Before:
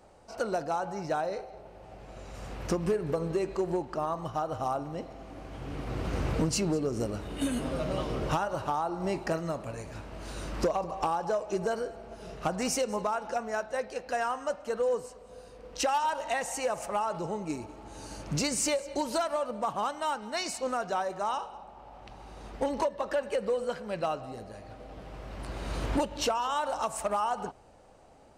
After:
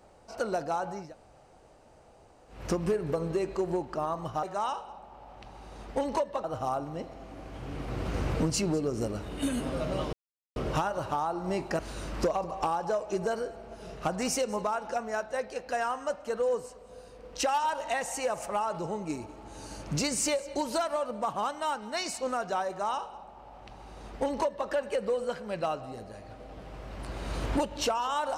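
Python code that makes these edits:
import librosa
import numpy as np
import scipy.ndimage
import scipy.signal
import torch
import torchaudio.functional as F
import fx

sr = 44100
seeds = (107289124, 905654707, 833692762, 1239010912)

y = fx.edit(x, sr, fx.room_tone_fill(start_s=1.03, length_s=1.55, crossfade_s=0.24),
    fx.insert_silence(at_s=8.12, length_s=0.43),
    fx.cut(start_s=9.35, length_s=0.84),
    fx.duplicate(start_s=21.08, length_s=2.01, to_s=4.43), tone=tone)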